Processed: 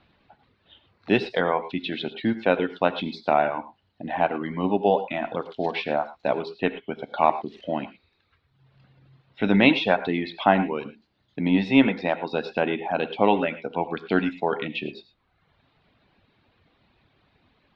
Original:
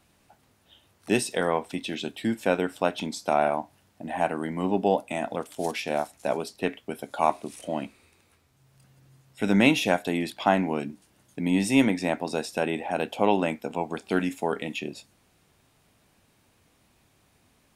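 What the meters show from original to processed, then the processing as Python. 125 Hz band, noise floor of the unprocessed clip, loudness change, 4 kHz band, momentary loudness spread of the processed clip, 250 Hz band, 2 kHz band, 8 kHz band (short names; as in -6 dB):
+1.5 dB, -65 dBFS, +2.5 dB, +2.0 dB, 12 LU, +2.0 dB, +3.0 dB, under -25 dB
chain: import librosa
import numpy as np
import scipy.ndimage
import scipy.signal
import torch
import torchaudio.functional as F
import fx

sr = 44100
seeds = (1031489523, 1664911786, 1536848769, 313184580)

y = scipy.signal.sosfilt(scipy.signal.ellip(4, 1.0, 70, 4100.0, 'lowpass', fs=sr, output='sos'), x)
y = fx.dereverb_blind(y, sr, rt60_s=0.98)
y = fx.rev_gated(y, sr, seeds[0], gate_ms=130, shape='rising', drr_db=12.0)
y = F.gain(torch.from_numpy(y), 4.0).numpy()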